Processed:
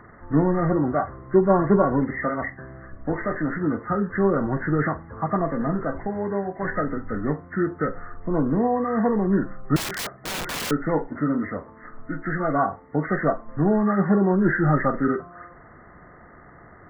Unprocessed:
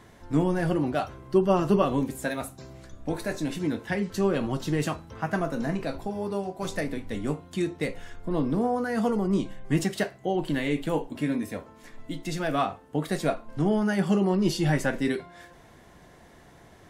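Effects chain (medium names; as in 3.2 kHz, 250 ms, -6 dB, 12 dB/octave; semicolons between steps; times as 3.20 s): knee-point frequency compression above 1.1 kHz 4:1; 9.76–10.71 s: integer overflow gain 28.5 dB; trim +4 dB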